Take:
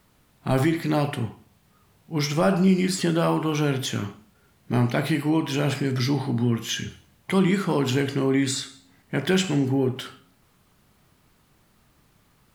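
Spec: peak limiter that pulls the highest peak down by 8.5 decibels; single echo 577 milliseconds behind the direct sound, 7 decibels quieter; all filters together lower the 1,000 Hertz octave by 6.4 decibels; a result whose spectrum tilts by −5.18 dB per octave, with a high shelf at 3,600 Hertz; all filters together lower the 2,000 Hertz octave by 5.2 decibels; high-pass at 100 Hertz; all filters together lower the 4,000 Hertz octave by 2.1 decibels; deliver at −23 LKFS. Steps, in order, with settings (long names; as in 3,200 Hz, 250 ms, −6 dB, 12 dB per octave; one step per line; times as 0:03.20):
high-pass filter 100 Hz
parametric band 1,000 Hz −8 dB
parametric band 2,000 Hz −4.5 dB
high-shelf EQ 3,600 Hz +5.5 dB
parametric band 4,000 Hz −4.5 dB
brickwall limiter −19 dBFS
single-tap delay 577 ms −7 dB
level +6 dB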